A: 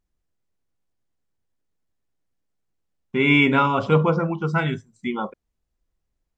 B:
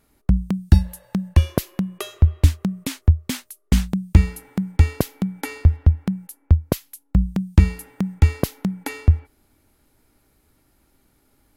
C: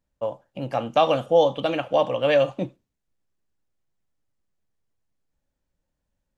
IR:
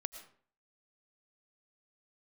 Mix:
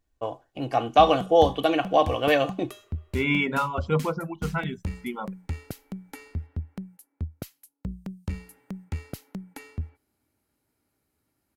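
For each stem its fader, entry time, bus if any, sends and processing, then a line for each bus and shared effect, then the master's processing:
−6.0 dB, 0.00 s, no send, reverb reduction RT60 0.92 s
−11.5 dB, 0.70 s, no send, high-pass filter 78 Hz 12 dB per octave; notch filter 3,500 Hz, Q 18; tube saturation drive 11 dB, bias 0.4
+0.5 dB, 0.00 s, no send, comb filter 2.7 ms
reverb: not used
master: no processing

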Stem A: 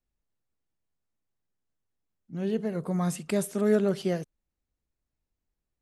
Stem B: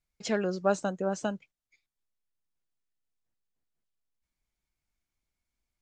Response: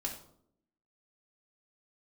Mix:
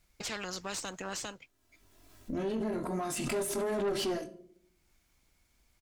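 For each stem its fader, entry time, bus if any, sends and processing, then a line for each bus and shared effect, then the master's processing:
−0.5 dB, 0.00 s, send −6.5 dB, comb filter 3 ms, depth 67%; chorus effect 1.3 Hz, delay 19.5 ms, depth 3.2 ms; background raised ahead of every attack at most 36 dB per second
−6.0 dB, 0.00 s, no send, every bin compressed towards the loudest bin 4 to 1; automatic ducking −12 dB, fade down 0.35 s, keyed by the first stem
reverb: on, RT60 0.70 s, pre-delay 3 ms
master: tube saturation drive 24 dB, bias 0.5; brickwall limiter −26 dBFS, peak gain reduction 4.5 dB

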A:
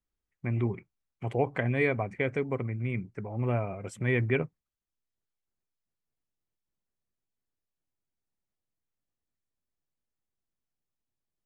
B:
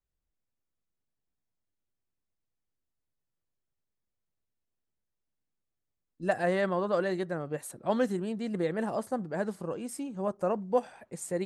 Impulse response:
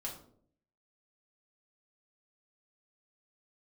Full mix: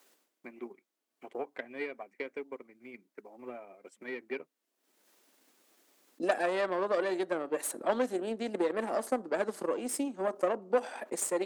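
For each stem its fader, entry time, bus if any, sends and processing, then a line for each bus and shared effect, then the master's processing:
−9.5 dB, 0.00 s, no send, no processing
−2.5 dB, 0.00 s, send −15.5 dB, envelope flattener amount 50%; automatic ducking −23 dB, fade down 0.30 s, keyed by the first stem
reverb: on, RT60 0.60 s, pre-delay 3 ms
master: tube saturation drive 23 dB, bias 0.55; Butterworth high-pass 250 Hz 36 dB per octave; transient designer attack +6 dB, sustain −5 dB

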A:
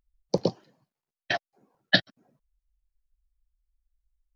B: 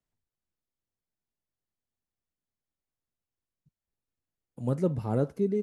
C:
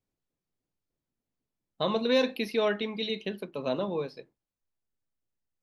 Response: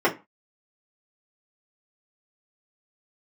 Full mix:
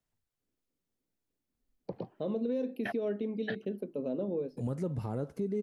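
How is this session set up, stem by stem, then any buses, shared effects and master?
−9.0 dB, 1.55 s, no bus, no send, low-pass filter 2,600 Hz 24 dB per octave
+1.5 dB, 0.00 s, bus A, no send, no processing
−7.5 dB, 0.40 s, bus A, no send, octave-band graphic EQ 250/500/1,000/2,000/4,000/8,000 Hz +10/+8/−10/−6/−12/−3 dB
bus A: 0.0 dB, downward compressor, threshold −28 dBFS, peak gain reduction 9 dB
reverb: not used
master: brickwall limiter −25 dBFS, peak gain reduction 9 dB

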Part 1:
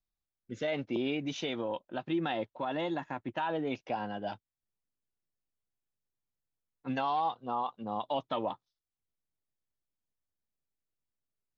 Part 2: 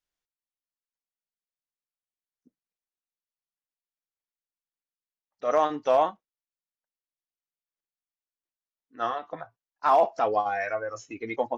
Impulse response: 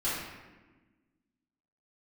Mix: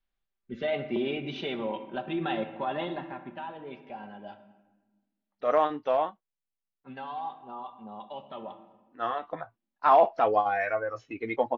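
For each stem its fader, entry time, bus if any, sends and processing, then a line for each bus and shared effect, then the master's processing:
0:02.80 0 dB → 0:03.50 −10 dB, 0.00 s, send −14.5 dB, comb filter 5.1 ms, depth 50%
+1.0 dB, 0.00 s, no send, automatic ducking −14 dB, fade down 1.45 s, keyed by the first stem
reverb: on, RT60 1.3 s, pre-delay 3 ms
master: low-pass filter 3,900 Hz 24 dB per octave

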